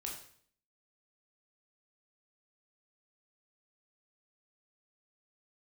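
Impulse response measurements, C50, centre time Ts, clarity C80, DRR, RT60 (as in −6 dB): 5.0 dB, 33 ms, 9.0 dB, −1.5 dB, 0.55 s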